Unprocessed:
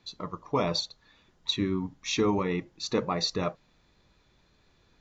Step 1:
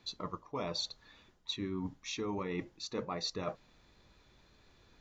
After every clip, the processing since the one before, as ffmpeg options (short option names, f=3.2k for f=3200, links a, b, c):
-af "equalizer=f=160:t=o:w=0.35:g=-4,areverse,acompressor=threshold=-36dB:ratio=6,areverse,volume=1dB"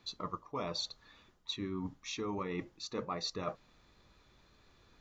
-af "equalizer=f=1.2k:w=5.9:g=5,volume=-1dB"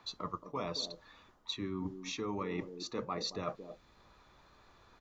-filter_complex "[0:a]acrossover=split=170|770|1200[a][b][c][d];[b]aecho=1:1:225:0.473[e];[c]acompressor=mode=upward:threshold=-56dB:ratio=2.5[f];[a][e][f][d]amix=inputs=4:normalize=0"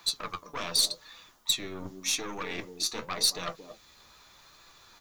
-af "aeval=exprs='0.0668*(cos(1*acos(clip(val(0)/0.0668,-1,1)))-cos(1*PI/2))+0.0168*(cos(4*acos(clip(val(0)/0.0668,-1,1)))-cos(4*PI/2))+0.00596*(cos(5*acos(clip(val(0)/0.0668,-1,1)))-cos(5*PI/2))':c=same,crystalizer=i=8.5:c=0,flanger=delay=5.9:depth=7.1:regen=53:speed=0.86:shape=sinusoidal"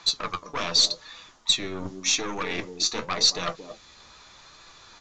-af "volume=6dB" -ar 16000 -c:a pcm_alaw